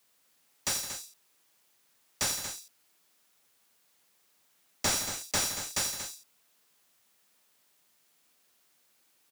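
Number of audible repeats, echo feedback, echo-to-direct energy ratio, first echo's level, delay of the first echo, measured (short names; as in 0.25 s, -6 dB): 3, no steady repeat, -5.5 dB, -10.0 dB, 83 ms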